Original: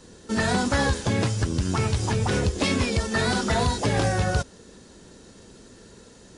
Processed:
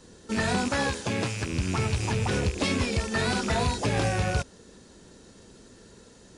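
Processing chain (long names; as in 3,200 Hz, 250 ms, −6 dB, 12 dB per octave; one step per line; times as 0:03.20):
loose part that buzzes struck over −29 dBFS, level −23 dBFS
0:00.68–0:01.53: high-pass filter 160 Hz 6 dB per octave
level −3 dB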